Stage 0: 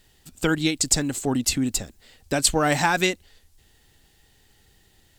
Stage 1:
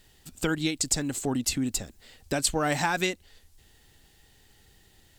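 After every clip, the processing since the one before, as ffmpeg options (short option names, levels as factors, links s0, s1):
-af "acompressor=threshold=0.0251:ratio=1.5"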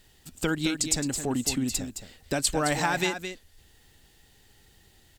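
-af "aecho=1:1:216:0.355"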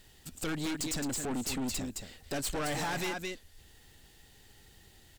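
-af "aeval=exprs='(tanh(44.7*val(0)+0.35)-tanh(0.35))/44.7':c=same,volume=1.19"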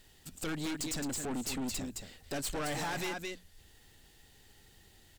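-af "bandreject=f=60:t=h:w=6,bandreject=f=120:t=h:w=6,bandreject=f=180:t=h:w=6,volume=0.794"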